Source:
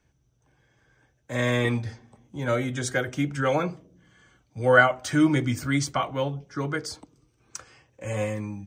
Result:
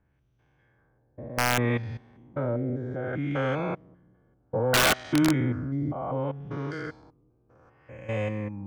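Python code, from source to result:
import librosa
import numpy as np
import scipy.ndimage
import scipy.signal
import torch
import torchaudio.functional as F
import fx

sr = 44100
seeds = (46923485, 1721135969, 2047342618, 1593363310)

y = fx.spec_steps(x, sr, hold_ms=200)
y = fx.filter_lfo_lowpass(y, sr, shape='sine', hz=0.64, low_hz=560.0, high_hz=3300.0, q=1.1)
y = (np.mod(10.0 ** (14.5 / 20.0) * y + 1.0, 2.0) - 1.0) / 10.0 ** (14.5 / 20.0)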